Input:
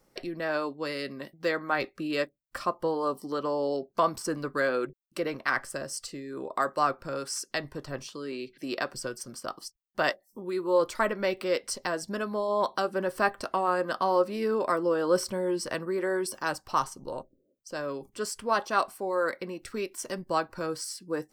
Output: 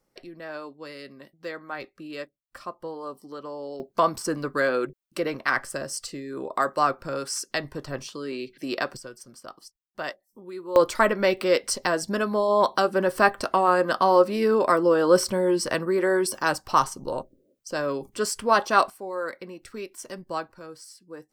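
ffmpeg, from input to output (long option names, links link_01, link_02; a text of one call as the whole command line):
ffmpeg -i in.wav -af "asetnsamples=nb_out_samples=441:pad=0,asendcmd='3.8 volume volume 3.5dB;8.97 volume volume -6dB;10.76 volume volume 6.5dB;18.9 volume volume -3dB;20.52 volume volume -9.5dB',volume=-7dB" out.wav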